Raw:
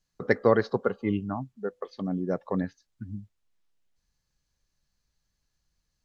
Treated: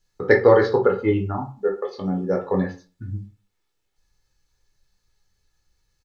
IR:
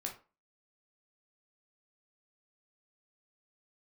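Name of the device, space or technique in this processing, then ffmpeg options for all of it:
microphone above a desk: -filter_complex "[0:a]aecho=1:1:2.3:0.53[a];[1:a]atrim=start_sample=2205[b];[a][b]afir=irnorm=-1:irlink=0,volume=7dB"

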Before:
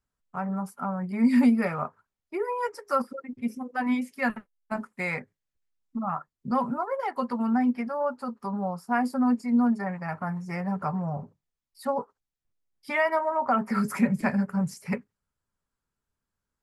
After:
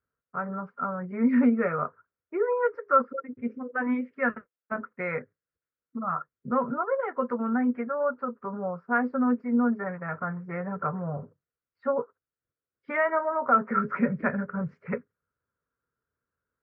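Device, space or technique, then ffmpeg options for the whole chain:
bass cabinet: -af "highpass=78,equalizer=f=200:t=q:w=4:g=-6,equalizer=f=480:t=q:w=4:g=8,equalizer=f=830:t=q:w=4:g=-10,equalizer=f=1.4k:t=q:w=4:g=8,lowpass=f=2k:w=0.5412,lowpass=f=2k:w=1.3066"

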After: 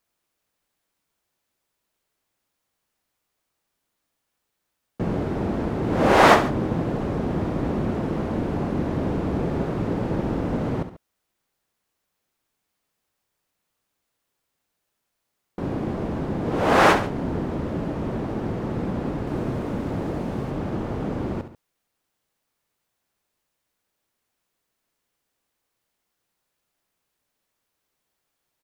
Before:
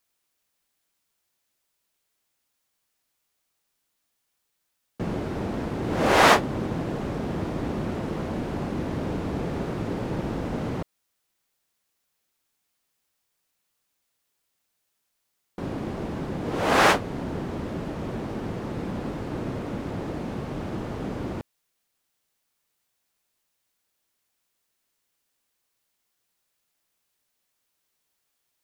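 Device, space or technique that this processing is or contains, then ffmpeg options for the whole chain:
behind a face mask: -filter_complex "[0:a]asettb=1/sr,asplit=3[a][b][c];[a]atrim=end=19.274[d];[b]atrim=start=19.27:end=20.51,asetpts=PTS-STARTPTS,afade=t=in:d=0.004:c=qsin,afade=t=out:st=1.236:d=0.004:c=qsin,highshelf=f=6.6k:g=6[e];[c]atrim=start=20.506[f];[d][e]acrossfade=d=0.004:c1=hsin:c2=qsin[g];[g][f]acrossfade=d=0.004:c1=qsin:c2=hsin,highshelf=f=2k:g=-8,aecho=1:1:68|139:0.282|0.141,volume=4dB"

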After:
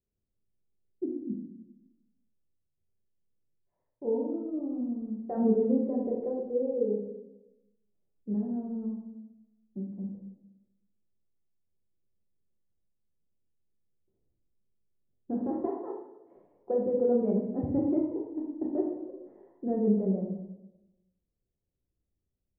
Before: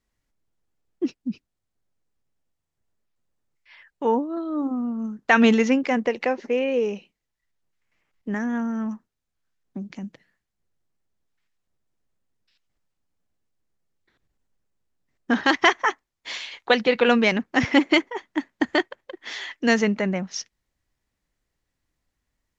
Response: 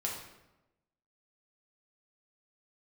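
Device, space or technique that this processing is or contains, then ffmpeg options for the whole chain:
next room: -filter_complex "[0:a]lowpass=f=540:w=0.5412,lowpass=f=540:w=1.3066[a];[1:a]atrim=start_sample=2205[b];[a][b]afir=irnorm=-1:irlink=0,asettb=1/sr,asplit=3[c][d][e];[c]atrim=end=15.674[f];[d]atrim=start=15.67:end=16.36,asetpts=PTS-STARTPTS,afade=t=in:d=0.004:c=qsin,afade=t=out:st=0.686:d=0.004:c=qsin,highpass=f=280:p=1[g];[e]atrim=start=16.356[h];[f][g]acrossfade=d=0.004:c1=hsin:c2=qsin[i];[i][h]acrossfade=d=0.004:c1=qsin:c2=hsin,volume=-7.5dB"

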